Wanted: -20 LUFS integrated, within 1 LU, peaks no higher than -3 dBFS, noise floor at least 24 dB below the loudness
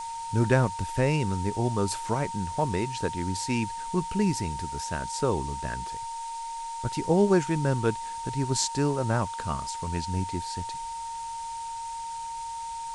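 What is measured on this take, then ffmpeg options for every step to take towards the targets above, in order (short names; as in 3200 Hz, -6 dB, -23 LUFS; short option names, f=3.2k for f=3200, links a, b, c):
steady tone 920 Hz; tone level -33 dBFS; noise floor -36 dBFS; noise floor target -53 dBFS; loudness -29.0 LUFS; peak -7.5 dBFS; loudness target -20.0 LUFS
-> -af "bandreject=f=920:w=30"
-af "afftdn=nr=17:nf=-36"
-af "volume=9dB,alimiter=limit=-3dB:level=0:latency=1"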